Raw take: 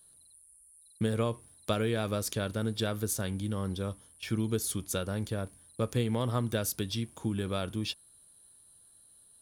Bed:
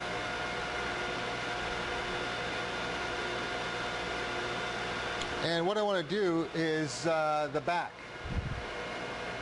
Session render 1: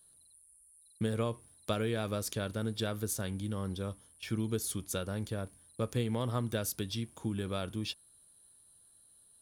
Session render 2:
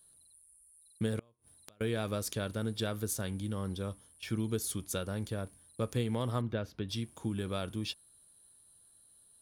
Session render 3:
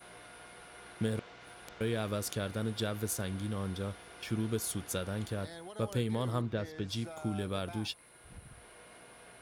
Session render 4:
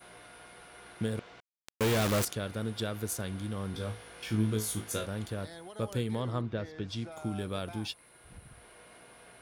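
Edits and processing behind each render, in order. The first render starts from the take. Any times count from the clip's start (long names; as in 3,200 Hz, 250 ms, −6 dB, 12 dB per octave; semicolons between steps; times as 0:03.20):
level −3 dB
0:01.19–0:01.81: gate with flip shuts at −33 dBFS, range −32 dB; 0:06.41–0:06.89: high-frequency loss of the air 300 metres
mix in bed −17 dB
0:01.40–0:02.25: log-companded quantiser 2 bits; 0:03.72–0:05.06: flutter between parallel walls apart 3.2 metres, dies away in 0.26 s; 0:06.20–0:07.12: high-frequency loss of the air 62 metres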